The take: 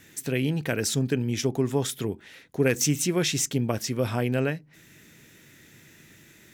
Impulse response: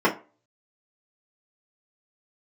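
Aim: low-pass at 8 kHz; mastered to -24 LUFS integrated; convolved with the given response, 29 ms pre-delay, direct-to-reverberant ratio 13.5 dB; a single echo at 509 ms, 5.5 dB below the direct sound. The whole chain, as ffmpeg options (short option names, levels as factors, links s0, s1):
-filter_complex "[0:a]lowpass=8000,aecho=1:1:509:0.531,asplit=2[s0][s1];[1:a]atrim=start_sample=2205,adelay=29[s2];[s1][s2]afir=irnorm=-1:irlink=0,volume=0.0266[s3];[s0][s3]amix=inputs=2:normalize=0,volume=1.26"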